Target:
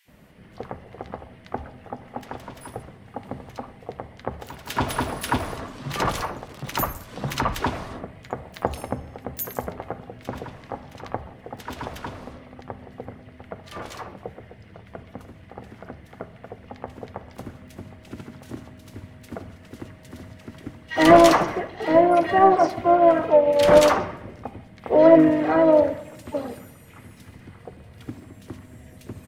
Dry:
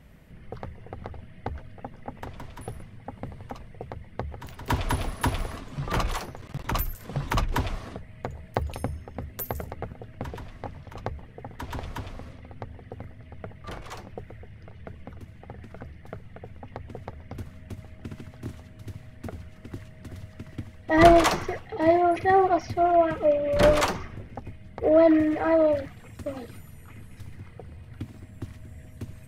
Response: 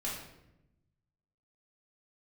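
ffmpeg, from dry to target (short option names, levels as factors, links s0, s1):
-filter_complex "[0:a]highpass=f=240:p=1,acrossover=split=2100[s0][s1];[s0]adelay=80[s2];[s2][s1]amix=inputs=2:normalize=0,acontrast=49,asplit=2[s3][s4];[1:a]atrim=start_sample=2205,lowpass=3800[s5];[s4][s5]afir=irnorm=-1:irlink=0,volume=0.251[s6];[s3][s6]amix=inputs=2:normalize=0,asplit=4[s7][s8][s9][s10];[s8]asetrate=22050,aresample=44100,atempo=2,volume=0.158[s11];[s9]asetrate=37084,aresample=44100,atempo=1.18921,volume=0.251[s12];[s10]asetrate=66075,aresample=44100,atempo=0.66742,volume=0.2[s13];[s7][s11][s12][s13]amix=inputs=4:normalize=0,volume=0.794"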